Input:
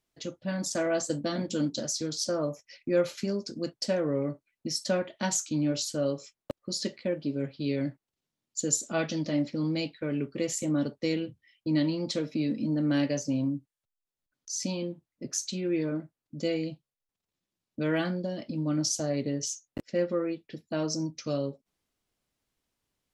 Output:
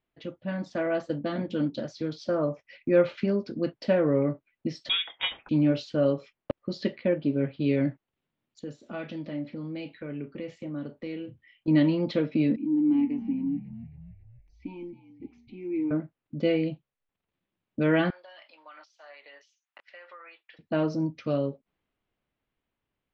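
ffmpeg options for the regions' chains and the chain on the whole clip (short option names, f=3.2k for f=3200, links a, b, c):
-filter_complex "[0:a]asettb=1/sr,asplit=3[a][b][c];[a]atrim=end=4.894[d];[b]atrim=start=4.89:end=5.49,asetpts=PTS-STARTPTS,afade=t=in:d=0.004:c=qsin,afade=t=out:st=0.596:d=0.004:c=qsin,highpass=260,lowpass=f=3.3k:t=q:w=0.5098,lowpass=f=3.3k:t=q:w=0.6013,lowpass=f=3.3k:t=q:w=0.9,lowpass=f=3.3k:t=q:w=2.563,afreqshift=-3900[e];[c]atrim=start=5.486[f];[d][e]acrossfade=d=0.004:c1=hsin:c2=qsin[g];[g][f]acrossfade=d=0.004:c1=qsin:c2=hsin,asettb=1/sr,asplit=3[h][i][j];[h]atrim=end=8.594[k];[i]atrim=start=8.59:end=11.68,asetpts=PTS-STARTPTS,afade=t=in:d=0.004:c=qsin,afade=t=out:st=3.086:d=0.004:c=qsin,acompressor=threshold=-47dB:ratio=2:attack=3.2:release=140:knee=1:detection=peak,asplit=2[l][m];[m]adelay=34,volume=-11.5dB[n];[l][n]amix=inputs=2:normalize=0,atrim=end_sample=136269[o];[j]atrim=start=11.676[p];[k][o]acrossfade=d=0.004:c1=hsin:c2=qsin[q];[q][p]acrossfade=d=0.004:c1=qsin:c2=hsin,asettb=1/sr,asplit=3[r][s][t];[r]atrim=end=12.564[u];[s]atrim=start=12.56:end=15.91,asetpts=PTS-STARTPTS,afade=t=in:d=0.004:c=qsin,afade=t=out:st=3.346:d=0.004:c=qsin,asplit=3[v][w][x];[v]bandpass=f=300:t=q:w=8,volume=0dB[y];[w]bandpass=f=870:t=q:w=8,volume=-6dB[z];[x]bandpass=f=2.24k:t=q:w=8,volume=-9dB[aa];[y][z][aa]amix=inputs=3:normalize=0,equalizer=f=440:t=o:w=0.23:g=6.5,asplit=6[ab][ac][ad][ae][af][ag];[ac]adelay=272,afreqshift=-55,volume=-14dB[ah];[ad]adelay=544,afreqshift=-110,volume=-19.4dB[ai];[ae]adelay=816,afreqshift=-165,volume=-24.7dB[aj];[af]adelay=1088,afreqshift=-220,volume=-30.1dB[ak];[ag]adelay=1360,afreqshift=-275,volume=-35.4dB[al];[ab][ah][ai][aj][ak][al]amix=inputs=6:normalize=0,atrim=end_sample=147735[am];[t]atrim=start=15.906[an];[u][am]acrossfade=d=0.004:c1=hsin:c2=qsin[ao];[ao][an]acrossfade=d=0.004:c1=qsin:c2=hsin,asettb=1/sr,asplit=3[ap][aq][ar];[ap]atrim=end=18.104[as];[aq]atrim=start=18.1:end=20.59,asetpts=PTS-STARTPTS,afade=t=in:d=0.004:c=qsin,afade=t=out:st=2.486:d=0.004:c=qsin,highpass=f=910:w=0.5412,highpass=f=910:w=1.3066,acompressor=threshold=-49dB:ratio=6:attack=3.2:release=140:knee=1:detection=peak[at];[ar]atrim=start=20.586[au];[as][at]acrossfade=d=0.004:c1=hsin:c2=qsin[av];[av][au]acrossfade=d=0.004:c1=qsin:c2=hsin,lowpass=f=3.1k:w=0.5412,lowpass=f=3.1k:w=1.3066,dynaudnorm=f=420:g=11:m=5dB"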